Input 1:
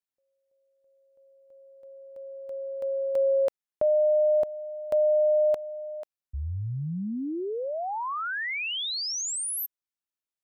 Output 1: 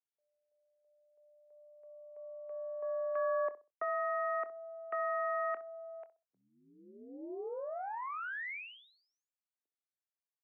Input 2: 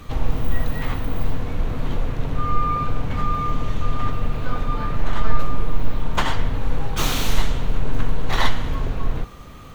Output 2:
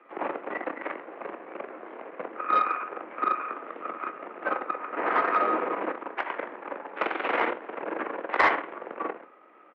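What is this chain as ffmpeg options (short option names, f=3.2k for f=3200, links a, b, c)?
-filter_complex "[0:a]aeval=exprs='0.794*(cos(1*acos(clip(val(0)/0.794,-1,1)))-cos(1*PI/2))+0.112*(cos(6*acos(clip(val(0)/0.794,-1,1)))-cos(6*PI/2))+0.158*(cos(7*acos(clip(val(0)/0.794,-1,1)))-cos(7*PI/2))':c=same,highpass=f=300:t=q:w=0.5412,highpass=f=300:t=q:w=1.307,lowpass=f=2.3k:t=q:w=0.5176,lowpass=f=2.3k:t=q:w=0.7071,lowpass=f=2.3k:t=q:w=1.932,afreqshift=50,acontrast=84,asplit=2[a][b];[b]adelay=25,volume=-13.5dB[c];[a][c]amix=inputs=2:normalize=0,asplit=2[d][e];[e]adelay=64,lowpass=f=1k:p=1,volume=-13dB,asplit=2[f][g];[g]adelay=64,lowpass=f=1k:p=1,volume=0.28,asplit=2[h][i];[i]adelay=64,lowpass=f=1k:p=1,volume=0.28[j];[f][h][j]amix=inputs=3:normalize=0[k];[d][k]amix=inputs=2:normalize=0,volume=-8dB"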